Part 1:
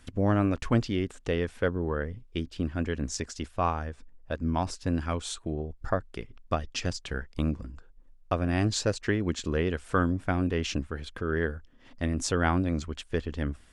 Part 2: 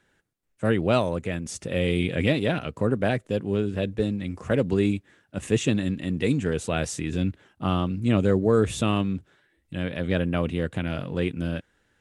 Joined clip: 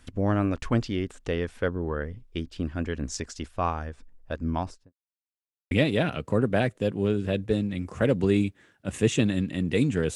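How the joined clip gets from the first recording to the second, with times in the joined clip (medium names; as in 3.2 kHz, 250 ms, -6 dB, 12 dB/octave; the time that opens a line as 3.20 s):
part 1
4.52–4.93 s: studio fade out
4.93–5.71 s: mute
5.71 s: go over to part 2 from 2.20 s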